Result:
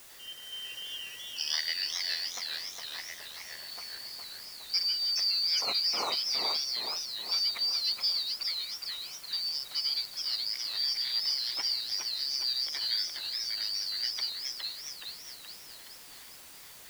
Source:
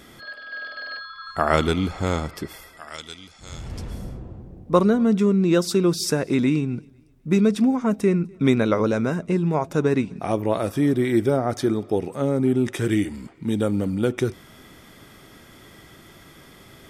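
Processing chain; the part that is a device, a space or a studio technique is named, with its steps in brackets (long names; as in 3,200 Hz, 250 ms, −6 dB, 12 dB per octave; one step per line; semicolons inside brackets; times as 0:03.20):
noise gate with hold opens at −36 dBFS
0:08.43–0:09.33: first difference
split-band scrambled radio (band-splitting scrambler in four parts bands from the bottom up 4321; band-pass filter 400–3,000 Hz; white noise bed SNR 16 dB)
feedback echo with a swinging delay time 418 ms, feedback 56%, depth 188 cents, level −4 dB
level −4 dB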